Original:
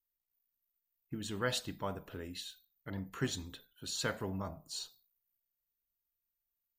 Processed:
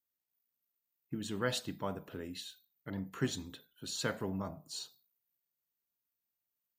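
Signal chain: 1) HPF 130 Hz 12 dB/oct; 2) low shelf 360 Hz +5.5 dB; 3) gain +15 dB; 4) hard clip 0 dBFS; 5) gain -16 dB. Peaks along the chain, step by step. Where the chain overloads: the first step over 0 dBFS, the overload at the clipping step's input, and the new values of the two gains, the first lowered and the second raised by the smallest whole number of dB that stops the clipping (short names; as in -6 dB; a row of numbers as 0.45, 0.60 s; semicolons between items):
-20.0, -18.0, -3.0, -3.0, -19.0 dBFS; no overload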